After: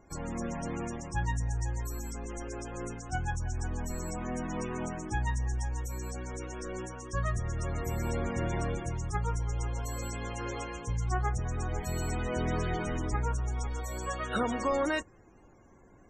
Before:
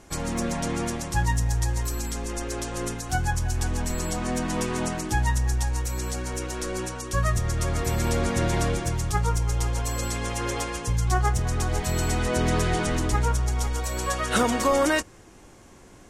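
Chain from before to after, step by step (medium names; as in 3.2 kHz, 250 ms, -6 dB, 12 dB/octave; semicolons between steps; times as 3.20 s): loudest bins only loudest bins 64; trim -7.5 dB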